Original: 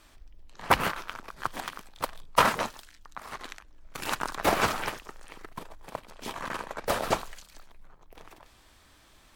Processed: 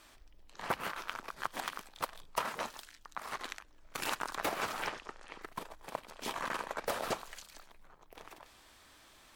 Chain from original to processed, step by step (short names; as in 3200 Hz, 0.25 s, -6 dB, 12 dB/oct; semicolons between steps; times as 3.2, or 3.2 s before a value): low shelf 190 Hz -9.5 dB; compressor 16:1, threshold -31 dBFS, peak gain reduction 16.5 dB; 4.87–5.42 air absorption 76 m